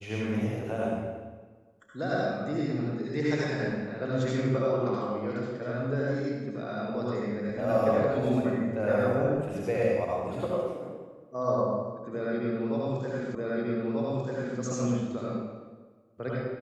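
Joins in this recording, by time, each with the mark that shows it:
13.35 repeat of the last 1.24 s

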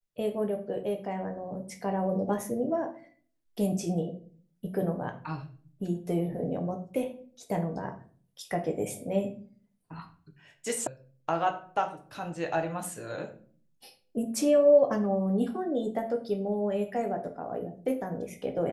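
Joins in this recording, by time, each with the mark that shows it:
10.87 sound cut off

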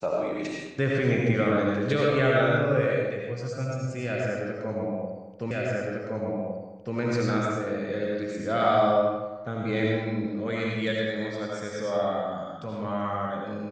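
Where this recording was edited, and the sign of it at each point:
5.51 repeat of the last 1.46 s

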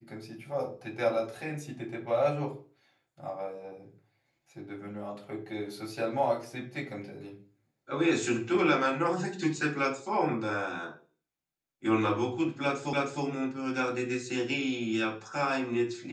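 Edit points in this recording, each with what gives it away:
12.93 repeat of the last 0.31 s

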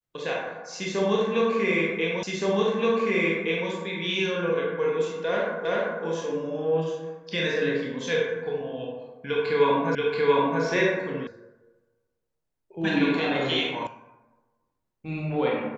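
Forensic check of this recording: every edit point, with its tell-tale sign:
2.23 repeat of the last 1.47 s
5.65 repeat of the last 0.39 s
9.95 repeat of the last 0.68 s
11.27 sound cut off
13.87 sound cut off

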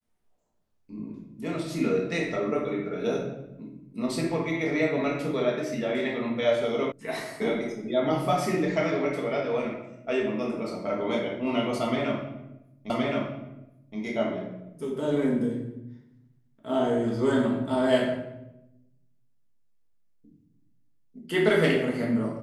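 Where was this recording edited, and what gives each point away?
6.92 sound cut off
12.9 repeat of the last 1.07 s

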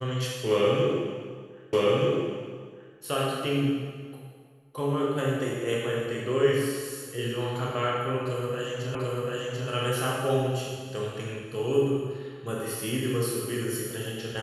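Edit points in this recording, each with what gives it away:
1.73 repeat of the last 1.23 s
8.95 repeat of the last 0.74 s

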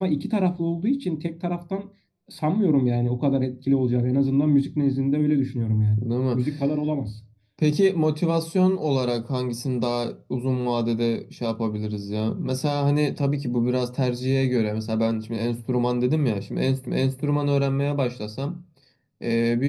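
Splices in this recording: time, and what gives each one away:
16.87 repeat of the last 0.35 s

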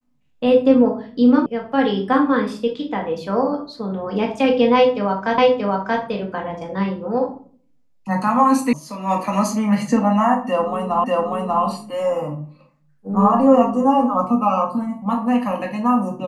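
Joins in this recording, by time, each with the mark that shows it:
1.46 sound cut off
5.38 repeat of the last 0.63 s
8.73 sound cut off
11.04 repeat of the last 0.59 s

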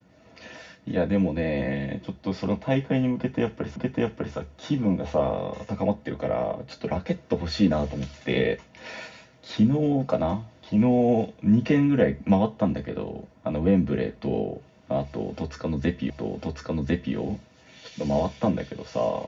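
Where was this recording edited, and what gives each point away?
3.76 repeat of the last 0.6 s
16.1 repeat of the last 1.05 s

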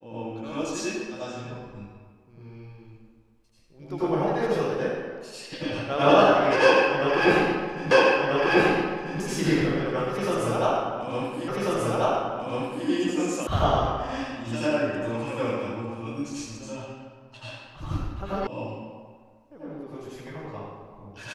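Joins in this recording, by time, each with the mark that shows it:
7.91 repeat of the last 1.29 s
11.48 repeat of the last 1.39 s
13.47 sound cut off
18.47 sound cut off

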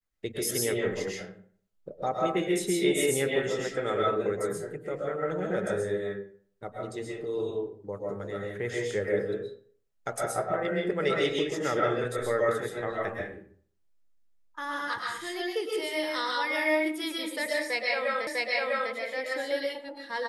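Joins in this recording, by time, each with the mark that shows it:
18.27 repeat of the last 0.65 s

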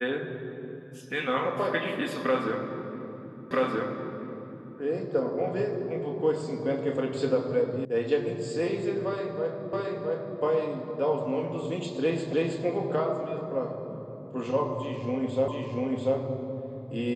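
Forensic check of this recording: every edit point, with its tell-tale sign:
3.51 repeat of the last 1.28 s
7.85 sound cut off
9.73 repeat of the last 0.67 s
12.33 repeat of the last 0.32 s
15.48 repeat of the last 0.69 s

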